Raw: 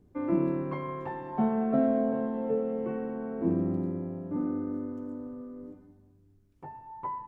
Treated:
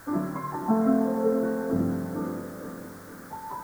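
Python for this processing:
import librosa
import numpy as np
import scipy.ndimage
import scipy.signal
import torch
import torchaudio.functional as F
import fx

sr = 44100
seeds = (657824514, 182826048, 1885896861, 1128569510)

p1 = fx.stretch_vocoder_free(x, sr, factor=0.5)
p2 = fx.quant_dither(p1, sr, seeds[0], bits=8, dither='triangular')
p3 = fx.high_shelf_res(p2, sr, hz=2000.0, db=-10.0, q=3.0)
p4 = p3 + fx.echo_feedback(p3, sr, ms=463, feedback_pct=49, wet_db=-11.0, dry=0)
y = p4 * librosa.db_to_amplitude(5.0)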